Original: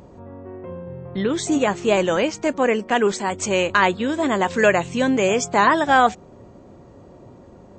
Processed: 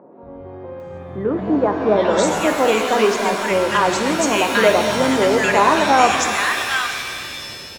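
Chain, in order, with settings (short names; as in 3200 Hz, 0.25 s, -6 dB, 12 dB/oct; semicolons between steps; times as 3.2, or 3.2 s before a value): three bands offset in time mids, lows, highs 0.23/0.8 s, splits 210/1400 Hz; shimmer reverb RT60 2.1 s, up +7 st, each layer -2 dB, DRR 5.5 dB; gain +2.5 dB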